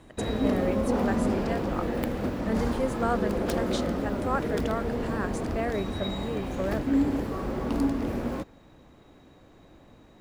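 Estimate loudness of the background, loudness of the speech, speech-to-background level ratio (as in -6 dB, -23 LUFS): -29.5 LUFS, -33.5 LUFS, -4.0 dB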